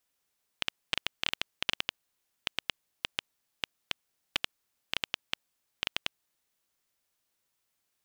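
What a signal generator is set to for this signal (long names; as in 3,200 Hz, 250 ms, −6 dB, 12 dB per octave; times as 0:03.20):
Geiger counter clicks 6.2 per second −9.5 dBFS 5.84 s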